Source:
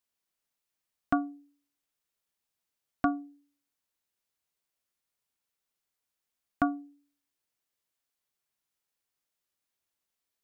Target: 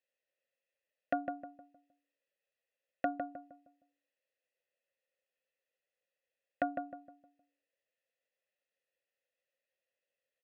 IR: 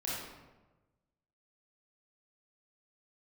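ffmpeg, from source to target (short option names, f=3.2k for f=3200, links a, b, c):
-filter_complex "[0:a]asplit=3[a][b][c];[a]bandpass=f=530:t=q:w=8,volume=0dB[d];[b]bandpass=f=1.84k:t=q:w=8,volume=-6dB[e];[c]bandpass=f=2.48k:t=q:w=8,volume=-9dB[f];[d][e][f]amix=inputs=3:normalize=0,aecho=1:1:1.5:0.35,asplit=2[g][h];[h]adelay=155,lowpass=f=1.1k:p=1,volume=-4.5dB,asplit=2[i][j];[j]adelay=155,lowpass=f=1.1k:p=1,volume=0.39,asplit=2[k][l];[l]adelay=155,lowpass=f=1.1k:p=1,volume=0.39,asplit=2[m][n];[n]adelay=155,lowpass=f=1.1k:p=1,volume=0.39,asplit=2[o][p];[p]adelay=155,lowpass=f=1.1k:p=1,volume=0.39[q];[i][k][m][o][q]amix=inputs=5:normalize=0[r];[g][r]amix=inputs=2:normalize=0,volume=11dB"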